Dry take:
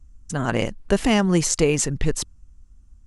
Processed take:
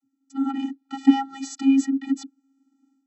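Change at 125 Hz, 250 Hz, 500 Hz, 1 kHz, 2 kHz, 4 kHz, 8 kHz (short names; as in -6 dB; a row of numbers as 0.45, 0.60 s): under -30 dB, +3.0 dB, under -25 dB, -1.5 dB, -12.0 dB, -10.0 dB, -15.5 dB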